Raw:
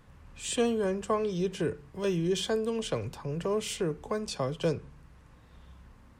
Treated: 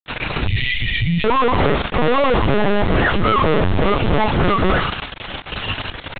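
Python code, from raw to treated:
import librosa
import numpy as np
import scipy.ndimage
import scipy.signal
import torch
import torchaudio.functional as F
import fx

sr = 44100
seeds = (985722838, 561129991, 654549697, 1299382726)

y = fx.octave_mirror(x, sr, pivot_hz=430.0)
y = fx.fuzz(y, sr, gain_db=55.0, gate_db=-52.0)
y = np.repeat(y[::2], 2)[:len(y)]
y = fx.brickwall_bandstop(y, sr, low_hz=200.0, high_hz=1800.0, at=(0.47, 1.25))
y = fx.lpc_vocoder(y, sr, seeds[0], excitation='pitch_kept', order=10)
y = fx.env_flatten(y, sr, amount_pct=50)
y = F.gain(torch.from_numpy(y), -1.0).numpy()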